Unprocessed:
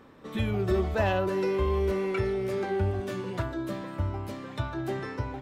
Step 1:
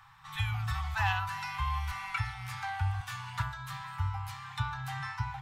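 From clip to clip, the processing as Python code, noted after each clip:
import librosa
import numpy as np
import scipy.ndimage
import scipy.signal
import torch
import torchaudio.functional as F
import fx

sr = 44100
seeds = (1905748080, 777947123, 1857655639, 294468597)

y = scipy.signal.sosfilt(scipy.signal.cheby1(5, 1.0, [150.0, 800.0], 'bandstop', fs=sr, output='sos'), x)
y = fx.peak_eq(y, sr, hz=63.0, db=-6.5, octaves=1.8)
y = y * 10.0 ** (2.5 / 20.0)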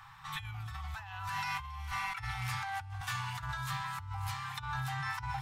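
y = fx.echo_wet_highpass(x, sr, ms=276, feedback_pct=62, hz=5400.0, wet_db=-7.0)
y = fx.over_compress(y, sr, threshold_db=-39.0, ratio=-1.0)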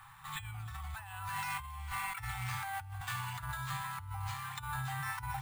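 y = np.repeat(scipy.signal.resample_poly(x, 1, 4), 4)[:len(x)]
y = y * 10.0 ** (-1.5 / 20.0)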